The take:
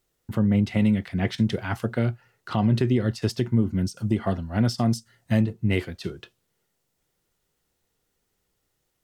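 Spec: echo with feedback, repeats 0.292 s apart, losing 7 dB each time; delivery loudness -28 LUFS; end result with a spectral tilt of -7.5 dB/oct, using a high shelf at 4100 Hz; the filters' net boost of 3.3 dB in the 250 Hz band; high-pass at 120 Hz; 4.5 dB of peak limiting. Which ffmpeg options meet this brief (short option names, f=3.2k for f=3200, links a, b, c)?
-af "highpass=120,equalizer=f=250:t=o:g=4.5,highshelf=f=4.1k:g=-8.5,alimiter=limit=-13.5dB:level=0:latency=1,aecho=1:1:292|584|876|1168|1460:0.447|0.201|0.0905|0.0407|0.0183,volume=-4dB"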